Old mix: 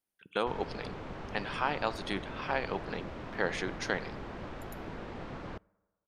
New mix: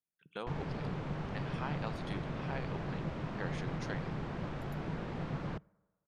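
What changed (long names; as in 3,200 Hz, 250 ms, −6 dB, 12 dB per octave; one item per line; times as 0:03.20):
speech −11.0 dB
master: add parametric band 150 Hz +12.5 dB 0.57 octaves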